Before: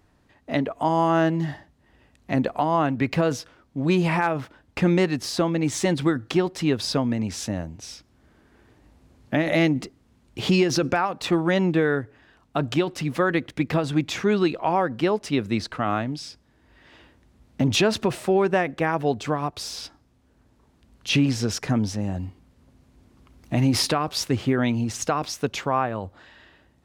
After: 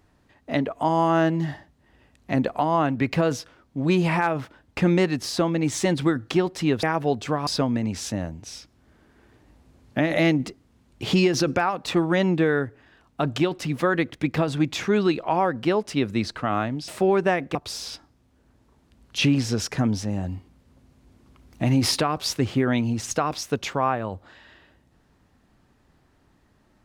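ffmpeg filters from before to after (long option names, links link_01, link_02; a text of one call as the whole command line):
ffmpeg -i in.wav -filter_complex "[0:a]asplit=5[link_01][link_02][link_03][link_04][link_05];[link_01]atrim=end=6.832[link_06];[link_02]atrim=start=18.818:end=19.462[link_07];[link_03]atrim=start=6.828:end=16.242[link_08];[link_04]atrim=start=18.148:end=18.822[link_09];[link_05]atrim=start=19.458[link_10];[link_06][link_07]acrossfade=duration=0.004:curve1=hsin:curve2=hsin[link_11];[link_11][link_08]acrossfade=duration=0.004:curve1=hsin:curve2=hsin[link_12];[link_12][link_09]acrossfade=duration=0.004:curve1=hsin:curve2=hsin[link_13];[link_13][link_10]acrossfade=duration=0.004:curve1=hsin:curve2=hsin" out.wav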